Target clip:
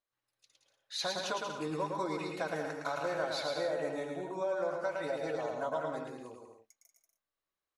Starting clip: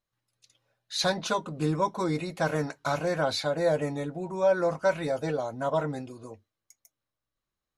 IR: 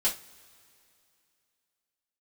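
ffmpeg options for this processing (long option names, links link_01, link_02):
-filter_complex "[0:a]bass=frequency=250:gain=-13,treble=frequency=4000:gain=-4,acompressor=threshold=-28dB:ratio=6,asplit=2[link_01][link_02];[link_02]aecho=0:1:110|187|240.9|278.6|305:0.631|0.398|0.251|0.158|0.1[link_03];[link_01][link_03]amix=inputs=2:normalize=0,volume=-4dB"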